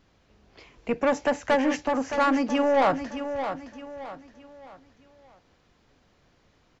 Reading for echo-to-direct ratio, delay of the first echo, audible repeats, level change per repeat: −8.5 dB, 617 ms, 4, −8.5 dB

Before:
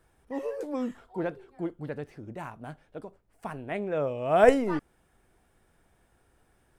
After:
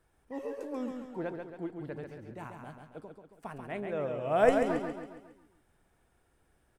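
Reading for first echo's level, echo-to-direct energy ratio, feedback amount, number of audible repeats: −5.5 dB, −4.5 dB, 49%, 5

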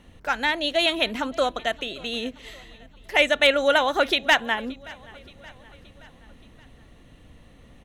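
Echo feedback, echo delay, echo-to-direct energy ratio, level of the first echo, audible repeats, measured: 55%, 574 ms, −21.5 dB, −23.0 dB, 3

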